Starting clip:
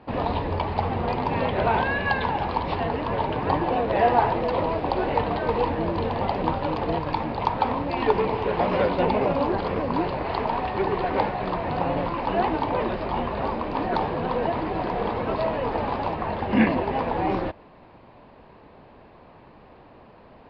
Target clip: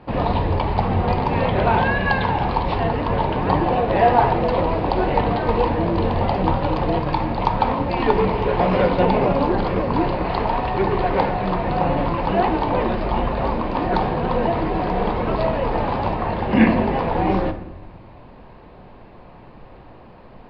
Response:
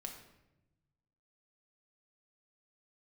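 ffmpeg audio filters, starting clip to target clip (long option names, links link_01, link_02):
-filter_complex "[0:a]asplit=2[link_01][link_02];[1:a]atrim=start_sample=2205,lowshelf=frequency=120:gain=11.5[link_03];[link_02][link_03]afir=irnorm=-1:irlink=0,volume=4.5dB[link_04];[link_01][link_04]amix=inputs=2:normalize=0,volume=-2.5dB"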